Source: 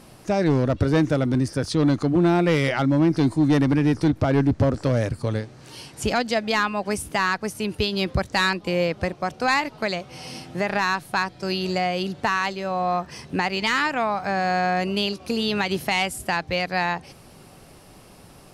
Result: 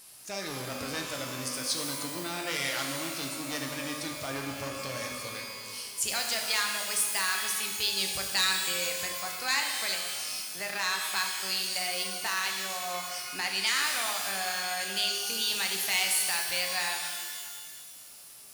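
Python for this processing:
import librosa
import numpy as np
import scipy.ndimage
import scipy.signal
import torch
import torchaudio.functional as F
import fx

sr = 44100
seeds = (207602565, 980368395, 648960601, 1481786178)

y = F.preemphasis(torch.from_numpy(x), 0.97).numpy()
y = fx.rev_shimmer(y, sr, seeds[0], rt60_s=1.7, semitones=12, shimmer_db=-2, drr_db=2.0)
y = y * librosa.db_to_amplitude(3.5)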